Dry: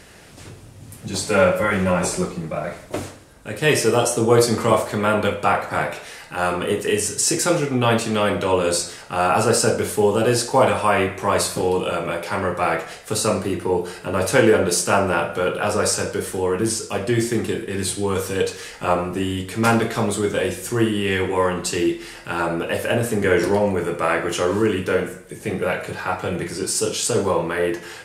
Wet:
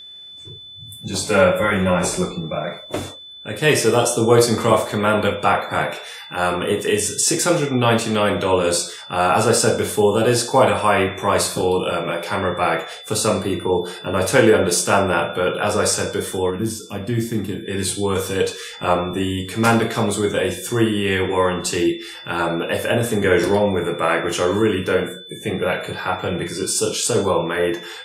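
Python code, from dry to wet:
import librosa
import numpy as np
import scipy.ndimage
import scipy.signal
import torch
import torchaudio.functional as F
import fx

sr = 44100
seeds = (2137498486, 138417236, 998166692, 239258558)

y = fx.noise_reduce_blind(x, sr, reduce_db=17)
y = y + 10.0 ** (-38.0 / 20.0) * np.sin(2.0 * np.pi * 3500.0 * np.arange(len(y)) / sr)
y = fx.spec_box(y, sr, start_s=16.5, length_s=1.15, low_hz=340.0, high_hz=11000.0, gain_db=-8)
y = F.gain(torch.from_numpy(y), 1.5).numpy()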